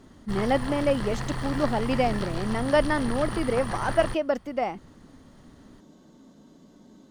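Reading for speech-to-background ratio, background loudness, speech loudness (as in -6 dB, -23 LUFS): 6.5 dB, -33.5 LUFS, -27.0 LUFS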